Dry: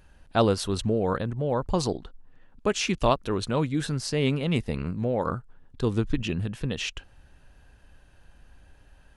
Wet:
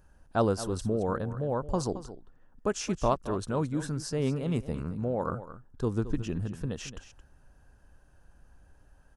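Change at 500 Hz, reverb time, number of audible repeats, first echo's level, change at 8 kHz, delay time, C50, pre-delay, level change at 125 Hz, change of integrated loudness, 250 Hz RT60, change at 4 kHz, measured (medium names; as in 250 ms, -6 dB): -4.0 dB, no reverb, 1, -13.5 dB, -4.0 dB, 221 ms, no reverb, no reverb, -4.0 dB, -4.0 dB, no reverb, -11.0 dB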